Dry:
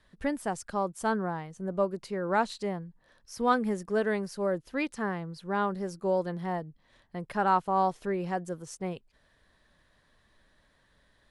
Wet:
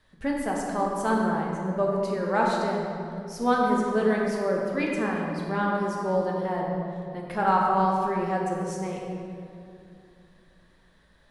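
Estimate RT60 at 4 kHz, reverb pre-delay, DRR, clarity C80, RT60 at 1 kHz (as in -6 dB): 1.5 s, 5 ms, -2.5 dB, 1.5 dB, 2.4 s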